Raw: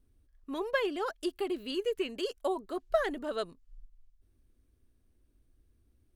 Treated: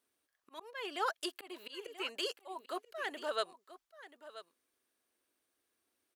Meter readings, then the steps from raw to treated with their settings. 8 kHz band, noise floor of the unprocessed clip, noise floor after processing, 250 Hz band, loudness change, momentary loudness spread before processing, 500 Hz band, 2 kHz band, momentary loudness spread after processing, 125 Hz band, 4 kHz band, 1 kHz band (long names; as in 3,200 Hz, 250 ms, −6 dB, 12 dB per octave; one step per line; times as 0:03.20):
+1.5 dB, −70 dBFS, below −85 dBFS, −12.5 dB, −6.0 dB, 7 LU, −10.0 dB, −3.5 dB, 18 LU, can't be measured, 0.0 dB, −2.0 dB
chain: high-pass filter 720 Hz 12 dB per octave
volume swells 224 ms
on a send: single-tap delay 983 ms −15 dB
on the sum: level +3.5 dB